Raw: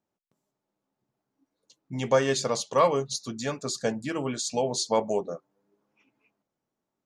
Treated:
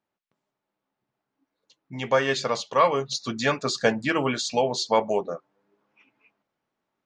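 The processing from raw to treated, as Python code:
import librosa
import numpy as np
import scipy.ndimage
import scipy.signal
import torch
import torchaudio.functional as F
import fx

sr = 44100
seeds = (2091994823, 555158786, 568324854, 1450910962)

y = fx.peak_eq(x, sr, hz=2100.0, db=9.5, octaves=3.0)
y = fx.rider(y, sr, range_db=4, speed_s=0.5)
y = fx.air_absorb(y, sr, metres=97.0)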